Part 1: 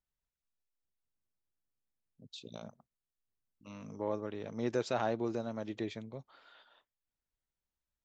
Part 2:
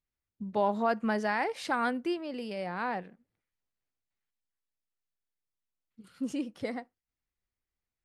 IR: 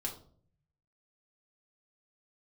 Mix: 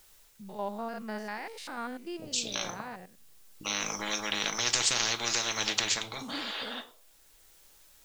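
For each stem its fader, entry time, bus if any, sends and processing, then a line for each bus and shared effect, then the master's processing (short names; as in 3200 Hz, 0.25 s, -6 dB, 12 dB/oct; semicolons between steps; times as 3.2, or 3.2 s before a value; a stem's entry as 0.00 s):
+2.5 dB, 0.00 s, send -3.5 dB, resonant low shelf 290 Hz -6 dB, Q 1.5; spectral compressor 10:1; auto duck -7 dB, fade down 0.25 s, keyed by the second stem
-7.0 dB, 0.00 s, no send, stepped spectrum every 0.1 s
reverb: on, RT60 0.50 s, pre-delay 4 ms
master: high shelf 2800 Hz +8 dB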